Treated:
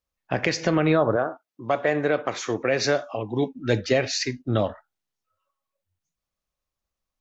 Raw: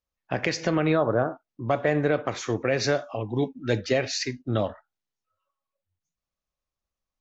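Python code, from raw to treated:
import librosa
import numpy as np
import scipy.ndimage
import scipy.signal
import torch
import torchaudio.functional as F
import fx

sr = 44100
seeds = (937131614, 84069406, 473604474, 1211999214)

y = fx.highpass(x, sr, hz=fx.line((1.15, 520.0), (3.52, 140.0)), slope=6, at=(1.15, 3.52), fade=0.02)
y = F.gain(torch.from_numpy(y), 2.5).numpy()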